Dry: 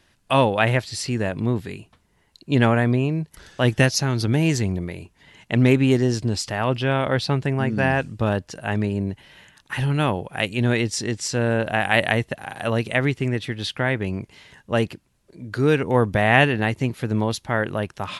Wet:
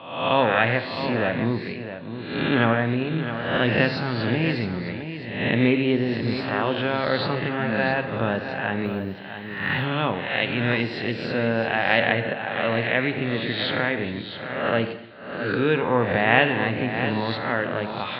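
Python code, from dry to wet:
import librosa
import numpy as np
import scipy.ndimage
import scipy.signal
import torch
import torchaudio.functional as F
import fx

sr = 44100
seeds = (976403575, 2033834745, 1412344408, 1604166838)

p1 = fx.spec_swells(x, sr, rise_s=0.81)
p2 = fx.recorder_agc(p1, sr, target_db=-9.5, rise_db_per_s=5.4, max_gain_db=30)
p3 = scipy.signal.sosfilt(scipy.signal.butter(2, 140.0, 'highpass', fs=sr, output='sos'), p2)
p4 = p3 + fx.echo_single(p3, sr, ms=663, db=-10.0, dry=0)
p5 = fx.rev_gated(p4, sr, seeds[0], gate_ms=320, shape='falling', drr_db=8.5)
p6 = fx.resample_bad(p5, sr, factor=3, down='filtered', up='zero_stuff', at=(8.85, 9.85))
p7 = scipy.signal.sosfilt(scipy.signal.ellip(4, 1.0, 40, 4100.0, 'lowpass', fs=sr, output='sos'), p6)
y = p7 * librosa.db_to_amplitude(-3.0)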